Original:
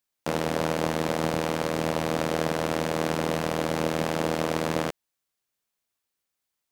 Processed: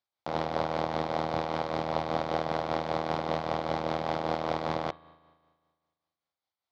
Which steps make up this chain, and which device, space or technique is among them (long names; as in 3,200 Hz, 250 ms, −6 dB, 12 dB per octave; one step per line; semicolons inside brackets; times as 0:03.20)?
combo amplifier with spring reverb and tremolo (spring reverb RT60 1.7 s, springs 37 ms, chirp 30 ms, DRR 17.5 dB; amplitude tremolo 5.1 Hz, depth 45%; loudspeaker in its box 77–4,400 Hz, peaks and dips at 180 Hz −8 dB, 270 Hz −8 dB, 440 Hz −6 dB, 780 Hz +5 dB, 1,700 Hz −6 dB, 2,700 Hz −9 dB)